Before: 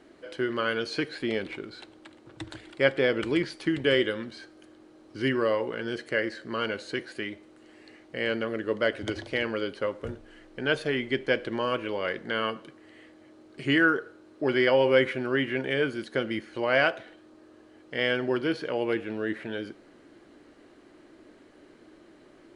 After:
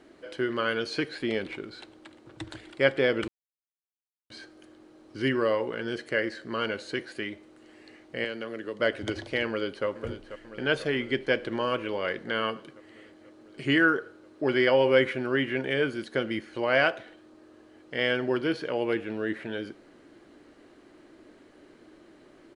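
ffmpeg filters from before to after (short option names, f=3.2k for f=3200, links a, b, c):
-filter_complex "[0:a]asettb=1/sr,asplit=3[a][b][c];[a]atrim=end=8.244[d];[b]atrim=start=8.24:end=8.8,asetpts=PTS-STARTPTS,afade=t=in:d=0.004:c=qsin,afade=t=out:st=0.556:d=0.004:c=qsin,acrossover=split=180|3200[e][f][g];[e]acompressor=threshold=-56dB:ratio=4[h];[f]acompressor=threshold=-33dB:ratio=4[i];[g]acompressor=threshold=-43dB:ratio=4[j];[h][i][j]amix=inputs=3:normalize=0[k];[c]atrim=start=8.796[l];[d][k]acrossfade=d=0.004:c1=hsin:c2=qsin[m];[m][l]acrossfade=d=0.004:c1=qsin:c2=hsin,asplit=2[n][o];[o]afade=t=in:st=9.46:d=0.01,afade=t=out:st=9.86:d=0.01,aecho=0:1:490|980|1470|1960|2450|2940|3430|3920|4410|4900|5390|5880:0.251189|0.188391|0.141294|0.10597|0.0794777|0.0596082|0.0447062|0.0335296|0.0251472|0.0188604|0.0141453|0.010609[p];[n][p]amix=inputs=2:normalize=0,asplit=3[q][r][s];[q]atrim=end=3.28,asetpts=PTS-STARTPTS,afade=t=out:st=3.276:d=0.004:c=hsin[t];[r]atrim=start=3.28:end=4.3,asetpts=PTS-STARTPTS,volume=0[u];[s]atrim=start=4.3,asetpts=PTS-STARTPTS,afade=t=in:d=0.004:c=hsin[v];[t][u][v]concat=n=3:v=0:a=1"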